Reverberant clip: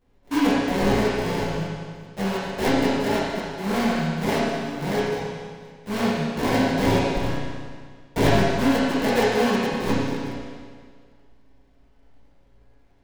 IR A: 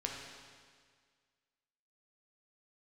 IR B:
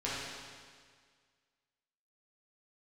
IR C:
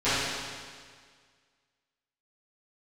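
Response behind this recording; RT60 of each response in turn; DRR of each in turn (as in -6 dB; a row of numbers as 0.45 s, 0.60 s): B; 1.8 s, 1.8 s, 1.8 s; -1.0 dB, -9.0 dB, -18.5 dB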